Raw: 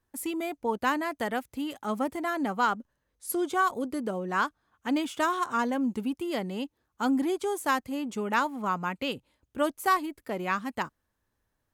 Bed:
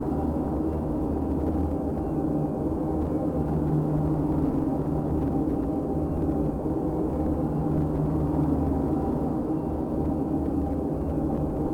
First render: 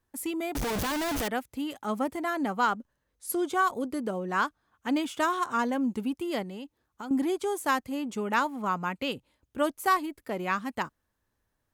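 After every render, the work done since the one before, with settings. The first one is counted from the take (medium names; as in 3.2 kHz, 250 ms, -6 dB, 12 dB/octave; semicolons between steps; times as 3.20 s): 0.55–1.28 s: one-bit comparator; 6.42–7.11 s: compression, threshold -36 dBFS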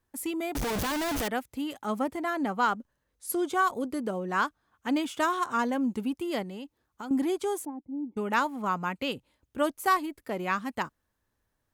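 2.02–2.66 s: treble shelf 5.6 kHz -4 dB; 7.65–8.17 s: cascade formant filter u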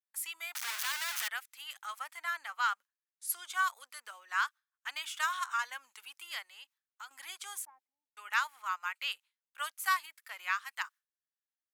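high-pass 1.3 kHz 24 dB/octave; gate with hold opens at -54 dBFS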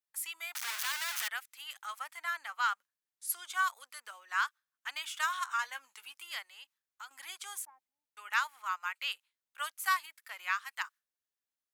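5.61–6.23 s: doubling 15 ms -10 dB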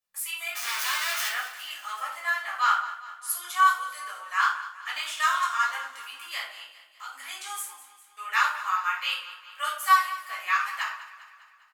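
feedback delay 201 ms, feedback 56%, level -15.5 dB; simulated room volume 700 m³, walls furnished, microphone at 5.9 m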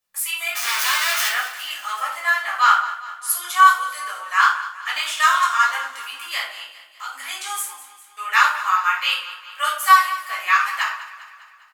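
trim +8 dB; peak limiter -2 dBFS, peak gain reduction 1.5 dB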